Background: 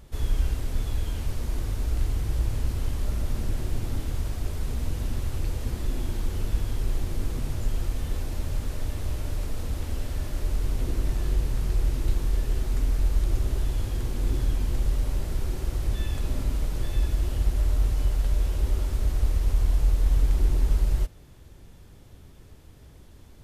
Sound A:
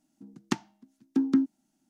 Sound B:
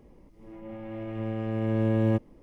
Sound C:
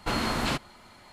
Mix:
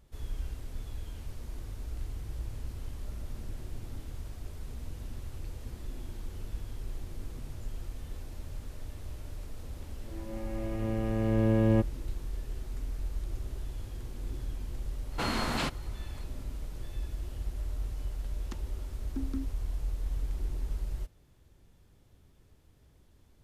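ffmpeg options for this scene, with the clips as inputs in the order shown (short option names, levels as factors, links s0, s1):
-filter_complex "[0:a]volume=0.251[s0];[1:a]alimiter=limit=0.158:level=0:latency=1:release=71[s1];[2:a]atrim=end=2.42,asetpts=PTS-STARTPTS,volume=0.944,afade=t=in:d=0.004:c=hsin,afade=t=out:st=2.416:d=0.004:c=hsin,adelay=9640[s2];[3:a]atrim=end=1.12,asetpts=PTS-STARTPTS,volume=0.668,afade=t=in:d=0.004:c=hsin,afade=t=out:st=1.116:d=0.004:c=hsin,adelay=15120[s3];[s1]atrim=end=1.89,asetpts=PTS-STARTPTS,volume=0.237,afade=t=in:d=0.004:c=hsin,afade=t=out:st=1.886:d=0.004:c=hsin,adelay=18000[s4];[s0][s2][s3][s4]amix=inputs=4:normalize=0"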